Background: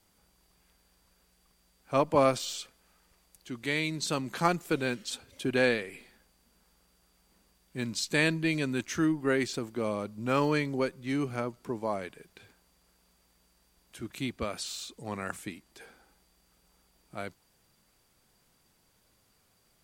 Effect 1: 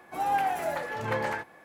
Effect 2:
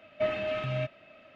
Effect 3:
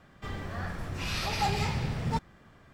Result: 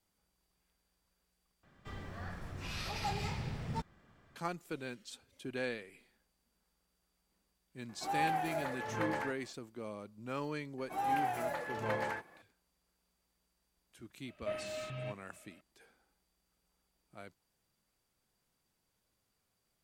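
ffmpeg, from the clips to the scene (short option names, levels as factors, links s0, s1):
-filter_complex "[1:a]asplit=2[s0][s1];[0:a]volume=0.237,asplit=2[s2][s3];[s2]atrim=end=1.634[s4];[3:a]atrim=end=2.73,asetpts=PTS-STARTPTS,volume=0.376[s5];[s3]atrim=start=4.356[s6];[s0]atrim=end=1.64,asetpts=PTS-STARTPTS,volume=0.447,afade=t=in:d=0.004:c=hsin,afade=t=out:st=1.636:d=0.004:c=hsin,adelay=7890[s7];[s1]atrim=end=1.64,asetpts=PTS-STARTPTS,volume=0.473,afade=t=in:d=0.004:c=hsin,afade=t=out:st=1.636:d=0.004:c=hsin,adelay=10780[s8];[2:a]atrim=end=1.35,asetpts=PTS-STARTPTS,volume=0.299,afade=t=in:d=0.004:c=hsin,afade=t=out:st=1.346:d=0.004:c=hsin,adelay=14260[s9];[s4][s5]acrossfade=d=0.004:c1=hsin:c2=hsin[s10];[s10][s6]acrossfade=d=0.004:c1=hsin:c2=hsin[s11];[s11][s7][s8][s9]amix=inputs=4:normalize=0"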